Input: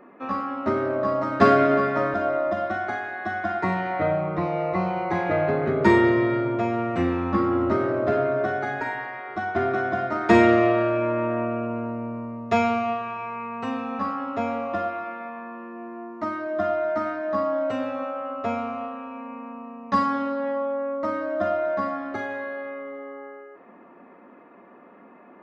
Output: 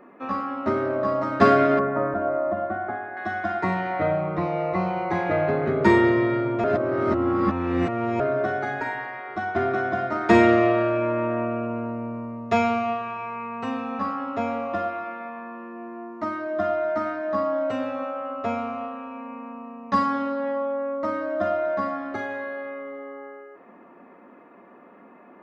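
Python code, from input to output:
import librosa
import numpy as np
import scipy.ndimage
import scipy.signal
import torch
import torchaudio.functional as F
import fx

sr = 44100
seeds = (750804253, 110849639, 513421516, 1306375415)

y = fx.lowpass(x, sr, hz=1300.0, slope=12, at=(1.79, 3.17))
y = fx.edit(y, sr, fx.reverse_span(start_s=6.64, length_s=1.56), tone=tone)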